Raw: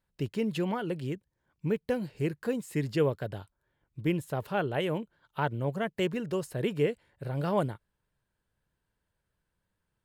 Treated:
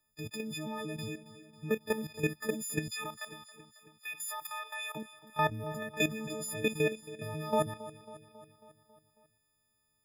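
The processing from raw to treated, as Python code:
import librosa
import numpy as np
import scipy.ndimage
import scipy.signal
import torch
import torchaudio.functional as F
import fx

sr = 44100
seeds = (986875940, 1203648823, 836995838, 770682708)

y = fx.freq_snap(x, sr, grid_st=6)
y = fx.highpass(y, sr, hz=970.0, slope=24, at=(2.89, 4.95), fade=0.02)
y = fx.level_steps(y, sr, step_db=13)
y = fx.echo_feedback(y, sr, ms=273, feedback_pct=60, wet_db=-16.5)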